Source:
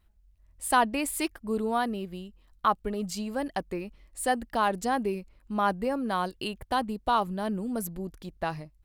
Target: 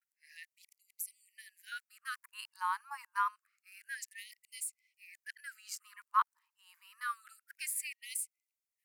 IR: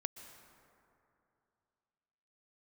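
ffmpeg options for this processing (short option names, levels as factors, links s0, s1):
-af "areverse,equalizer=f=3500:t=o:w=0.65:g=-14,afftfilt=real='re*gte(b*sr/1024,840*pow(2000/840,0.5+0.5*sin(2*PI*0.27*pts/sr)))':imag='im*gte(b*sr/1024,840*pow(2000/840,0.5+0.5*sin(2*PI*0.27*pts/sr)))':win_size=1024:overlap=0.75,volume=0.75"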